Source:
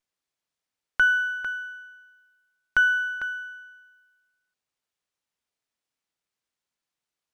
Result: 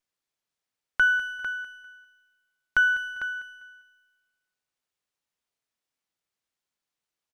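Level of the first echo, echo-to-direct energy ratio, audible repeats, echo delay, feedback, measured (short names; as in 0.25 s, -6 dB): -16.0 dB, -15.5 dB, 2, 0.199 s, 29%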